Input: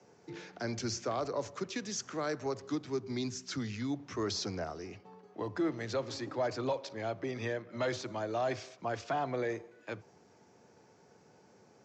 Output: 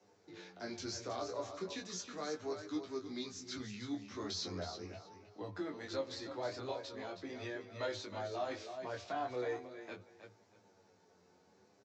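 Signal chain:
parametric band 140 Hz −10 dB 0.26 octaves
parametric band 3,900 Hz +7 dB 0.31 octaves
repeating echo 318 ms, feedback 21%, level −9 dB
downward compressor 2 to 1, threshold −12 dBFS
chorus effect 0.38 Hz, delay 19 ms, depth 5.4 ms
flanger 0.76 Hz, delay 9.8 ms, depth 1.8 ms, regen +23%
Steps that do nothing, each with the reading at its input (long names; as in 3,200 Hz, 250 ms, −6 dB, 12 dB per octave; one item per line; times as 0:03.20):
downward compressor, threshold −12 dBFS: peak of its input −21.5 dBFS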